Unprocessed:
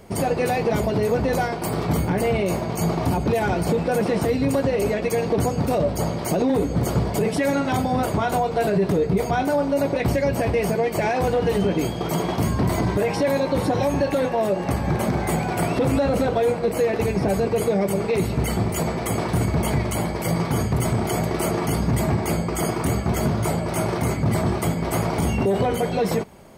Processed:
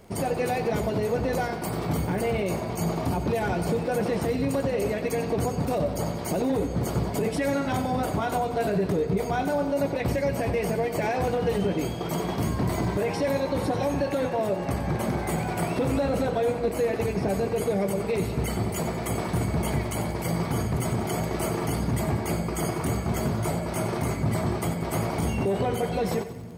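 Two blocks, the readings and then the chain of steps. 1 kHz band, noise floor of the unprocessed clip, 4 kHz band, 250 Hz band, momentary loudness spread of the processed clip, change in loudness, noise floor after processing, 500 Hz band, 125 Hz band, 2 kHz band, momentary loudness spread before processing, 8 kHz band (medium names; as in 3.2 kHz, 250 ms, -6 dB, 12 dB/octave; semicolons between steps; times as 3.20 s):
-4.5 dB, -28 dBFS, -4.5 dB, -4.5 dB, 3 LU, -4.5 dB, -32 dBFS, -4.5 dB, -4.5 dB, -4.5 dB, 3 LU, -4.5 dB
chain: crackle 16 per s -35 dBFS; two-band feedback delay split 340 Hz, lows 700 ms, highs 92 ms, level -12 dB; trim -5 dB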